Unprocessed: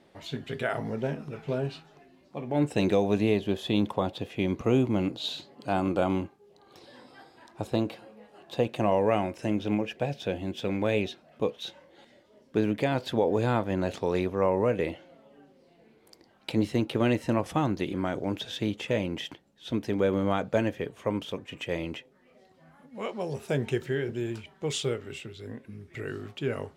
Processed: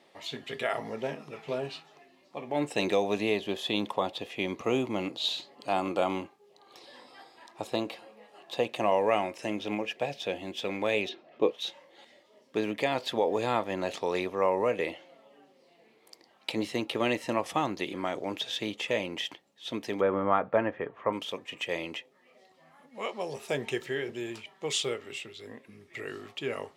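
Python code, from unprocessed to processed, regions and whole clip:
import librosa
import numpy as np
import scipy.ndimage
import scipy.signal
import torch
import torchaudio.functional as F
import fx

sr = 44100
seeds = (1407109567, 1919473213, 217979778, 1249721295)

y = fx.chain(x, sr, fx.lowpass(hz=4000.0, slope=12),
    fx.peak_eq(hz=350.0, db=11.0, octaves=0.69), at=(11.09, 11.51))
y = fx.chain(y, sr, fx.lowpass_res(hz=1400.0, q=1.9),
    fx.low_shelf(hz=120.0, db=7.0), at=(20.01, 21.13))
y = fx.highpass(y, sr, hz=810.0, slope=6)
y = fx.high_shelf(y, sr, hz=9200.0, db=-4.0)
y = fx.notch(y, sr, hz=1500.0, q=6.4)
y = F.gain(torch.from_numpy(y), 4.0).numpy()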